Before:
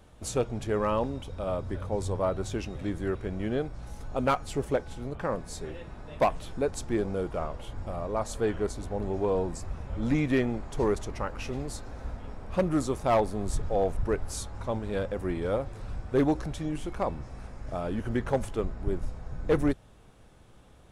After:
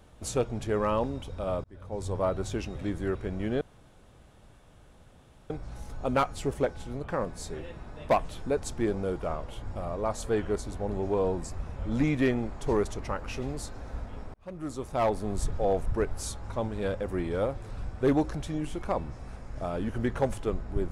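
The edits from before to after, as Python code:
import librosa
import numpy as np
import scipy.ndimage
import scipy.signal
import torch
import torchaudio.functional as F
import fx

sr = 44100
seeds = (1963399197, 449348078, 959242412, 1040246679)

y = fx.edit(x, sr, fx.fade_in_span(start_s=1.64, length_s=0.56),
    fx.insert_room_tone(at_s=3.61, length_s=1.89),
    fx.fade_in_span(start_s=12.45, length_s=0.93), tone=tone)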